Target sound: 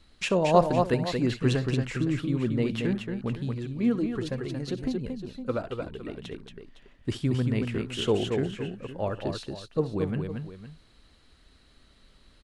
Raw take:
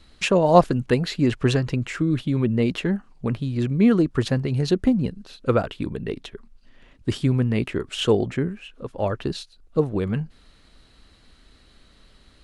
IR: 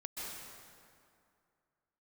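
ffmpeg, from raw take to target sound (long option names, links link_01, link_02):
-filter_complex "[0:a]aecho=1:1:65|228|510:0.141|0.562|0.2,asettb=1/sr,asplit=3[link_01][link_02][link_03];[link_01]atrim=end=3.544[link_04];[link_02]atrim=start=3.54:end=6.18,asetpts=PTS-STARTPTS,afade=type=in:duration=0.004:curve=qsin,afade=type=out:start_time=2.636:duration=0.004:curve=qsin,flanger=delay=1.8:depth=2.3:regen=47:speed=1.3:shape=triangular[link_05];[link_03]atrim=start=6.176[link_06];[link_04][link_05]acrossfade=duration=0.004:curve1=hsin:curve2=qsin[link_07];[link_07][link_06]acrossfade=duration=0.004:curve1=qsin:curve2=hsin,volume=-6dB"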